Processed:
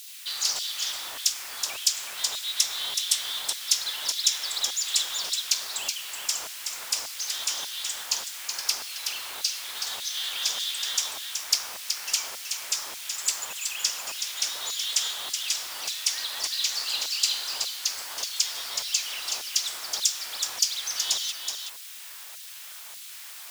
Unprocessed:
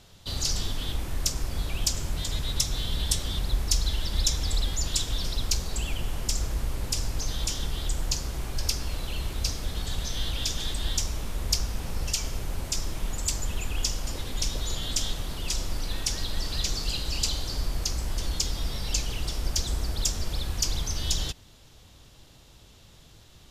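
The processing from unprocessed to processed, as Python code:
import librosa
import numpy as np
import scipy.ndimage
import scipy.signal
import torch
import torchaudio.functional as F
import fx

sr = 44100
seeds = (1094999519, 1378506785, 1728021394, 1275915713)

p1 = fx.low_shelf(x, sr, hz=93.0, db=7.5)
p2 = fx.quant_dither(p1, sr, seeds[0], bits=6, dither='triangular')
p3 = p1 + F.gain(torch.from_numpy(p2), -7.5).numpy()
p4 = fx.filter_lfo_highpass(p3, sr, shape='saw_down', hz=1.7, low_hz=720.0, high_hz=3900.0, q=1.1)
y = p4 + fx.echo_single(p4, sr, ms=374, db=-6.0, dry=0)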